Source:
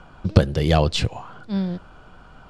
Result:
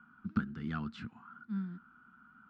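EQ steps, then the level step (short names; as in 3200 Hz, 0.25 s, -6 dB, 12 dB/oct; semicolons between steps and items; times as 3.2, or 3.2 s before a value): double band-pass 560 Hz, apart 2.6 oct; -4.5 dB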